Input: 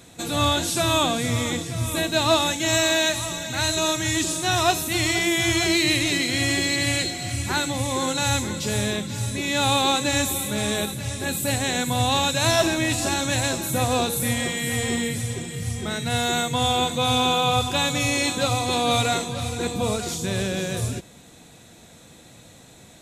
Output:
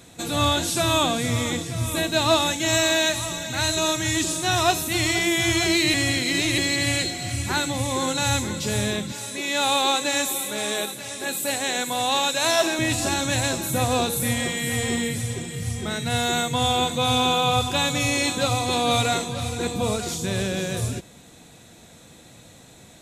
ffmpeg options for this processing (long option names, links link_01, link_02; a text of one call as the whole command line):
ffmpeg -i in.wav -filter_complex "[0:a]asettb=1/sr,asplit=3[link_01][link_02][link_03];[link_01]atrim=end=9.124[link_04];[link_02]atrim=start=9.12:end=12.79,asetpts=PTS-STARTPTS,afade=type=in:duration=0.004:curve=qsin,afade=type=out:start_time=3.666:duration=0.004:curve=qsin,highpass=330[link_05];[link_03]atrim=start=12.786[link_06];[link_04][link_05]acrossfade=duration=0.004:curve1=hsin:curve2=qsin[link_07];[link_07][link_06]acrossfade=duration=0.004:curve1=qsin:curve2=hsin,asplit=3[link_08][link_09][link_10];[link_08]atrim=end=5.942[link_11];[link_09]atrim=start=5.938:end=6.582,asetpts=PTS-STARTPTS,areverse[link_12];[link_10]atrim=start=6.578[link_13];[link_11][link_12]acrossfade=duration=0.004:curve1=hsin:curve2=hsin[link_14];[link_14][link_13]acrossfade=duration=0.004:curve1=hsin:curve2=hsin" out.wav